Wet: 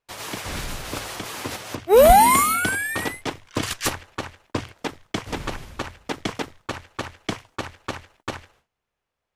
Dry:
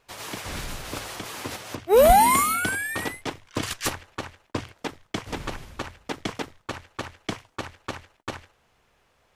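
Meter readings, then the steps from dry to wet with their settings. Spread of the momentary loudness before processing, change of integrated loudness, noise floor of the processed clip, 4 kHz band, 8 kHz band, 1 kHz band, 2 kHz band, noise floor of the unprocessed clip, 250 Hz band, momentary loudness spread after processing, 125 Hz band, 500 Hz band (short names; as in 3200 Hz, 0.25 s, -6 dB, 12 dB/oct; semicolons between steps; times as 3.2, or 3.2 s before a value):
20 LU, +3.0 dB, -83 dBFS, +3.0 dB, +3.0 dB, +3.0 dB, +3.0 dB, -66 dBFS, +3.0 dB, 20 LU, +3.0 dB, +3.0 dB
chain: gate with hold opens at -51 dBFS; gain +3 dB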